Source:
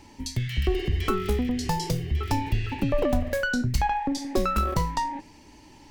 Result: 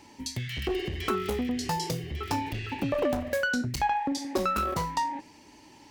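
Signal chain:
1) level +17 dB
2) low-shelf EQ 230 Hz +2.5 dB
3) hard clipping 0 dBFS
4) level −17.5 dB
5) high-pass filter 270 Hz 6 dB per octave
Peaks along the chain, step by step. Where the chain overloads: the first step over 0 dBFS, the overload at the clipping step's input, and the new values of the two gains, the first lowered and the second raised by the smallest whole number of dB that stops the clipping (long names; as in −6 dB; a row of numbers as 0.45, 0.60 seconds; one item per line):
+5.5, +7.0, 0.0, −17.5, −15.0 dBFS
step 1, 7.0 dB
step 1 +10 dB, step 4 −10.5 dB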